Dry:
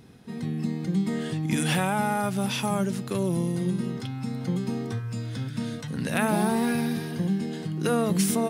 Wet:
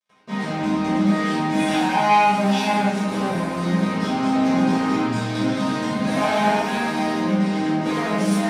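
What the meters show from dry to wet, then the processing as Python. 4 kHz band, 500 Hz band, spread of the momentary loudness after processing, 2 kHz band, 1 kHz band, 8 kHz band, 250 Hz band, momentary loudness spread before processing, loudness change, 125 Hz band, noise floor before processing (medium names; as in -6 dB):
+6.5 dB, +5.5 dB, 6 LU, +8.0 dB, +11.5 dB, -2.0 dB, +6.5 dB, 9 LU, +6.5 dB, +1.5 dB, -37 dBFS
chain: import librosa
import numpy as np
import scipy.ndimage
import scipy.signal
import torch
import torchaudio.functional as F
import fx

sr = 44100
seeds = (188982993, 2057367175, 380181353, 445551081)

y = fx.peak_eq(x, sr, hz=760.0, db=10.5, octaves=0.78)
y = fx.hum_notches(y, sr, base_hz=60, count=6)
y = fx.rider(y, sr, range_db=10, speed_s=2.0)
y = fx.fuzz(y, sr, gain_db=35.0, gate_db=-38.0)
y = fx.bandpass_edges(y, sr, low_hz=120.0, high_hz=7200.0)
y = fx.resonator_bank(y, sr, root=56, chord='major', decay_s=0.21)
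y = fx.room_shoebox(y, sr, seeds[0], volume_m3=560.0, walls='mixed', distance_m=5.6)
y = y * 10.0 ** (-3.0 / 20.0)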